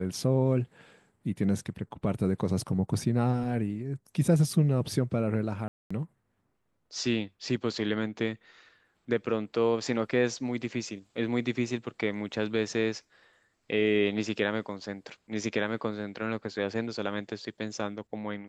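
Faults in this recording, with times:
5.68–5.91 gap 0.225 s

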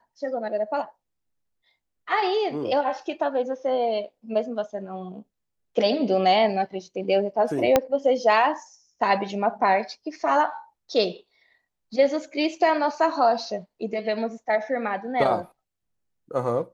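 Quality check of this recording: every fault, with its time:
7.76 pop -4 dBFS

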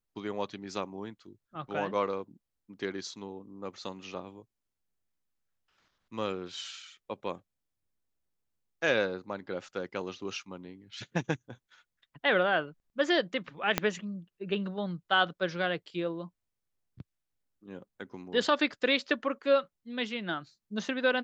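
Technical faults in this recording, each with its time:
13.78 pop -9 dBFS

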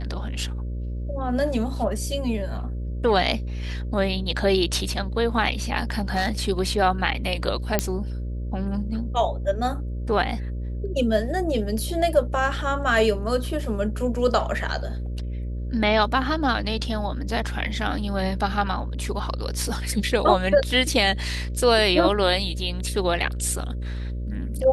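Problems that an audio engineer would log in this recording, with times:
buzz 60 Hz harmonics 10 -29 dBFS
5.79–6.44 clipped -17.5 dBFS
7.79 pop -4 dBFS

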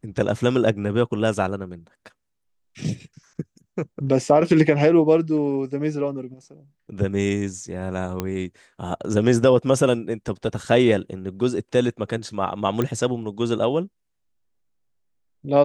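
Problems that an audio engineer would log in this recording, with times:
8.2 pop -11 dBFS
12.82 pop -11 dBFS

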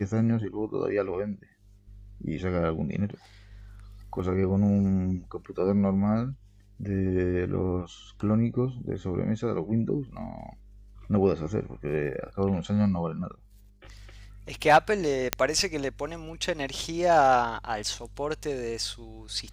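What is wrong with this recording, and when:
15.33 pop -4 dBFS

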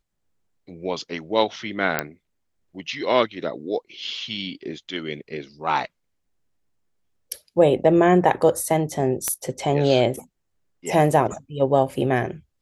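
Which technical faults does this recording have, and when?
1.99 pop -6 dBFS
9.28 pop -7 dBFS

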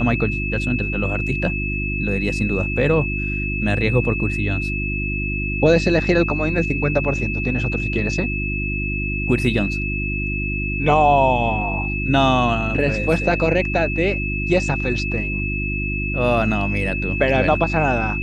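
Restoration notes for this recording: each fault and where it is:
hum 50 Hz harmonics 7 -25 dBFS
tone 2600 Hz -25 dBFS

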